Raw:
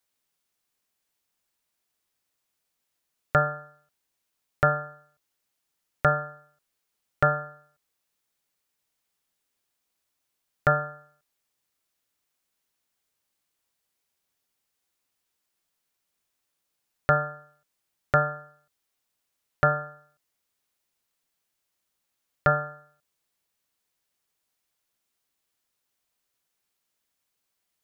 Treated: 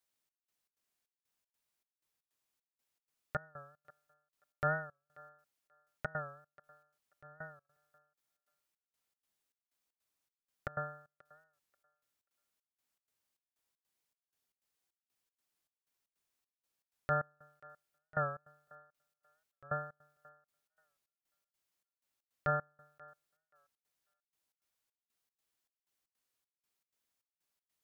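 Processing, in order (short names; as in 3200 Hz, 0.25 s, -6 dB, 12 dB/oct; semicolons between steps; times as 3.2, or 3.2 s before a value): limiter -15 dBFS, peak gain reduction 9 dB; step gate "xxx..xx." 156 bpm -24 dB; thinning echo 0.535 s, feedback 17%, high-pass 410 Hz, level -22 dB; record warp 45 rpm, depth 100 cents; gain -6.5 dB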